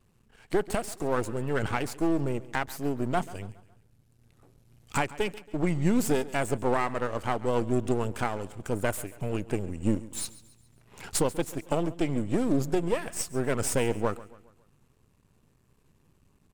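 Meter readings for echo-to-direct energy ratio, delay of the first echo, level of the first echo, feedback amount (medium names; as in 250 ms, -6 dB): -17.5 dB, 138 ms, -18.5 dB, 45%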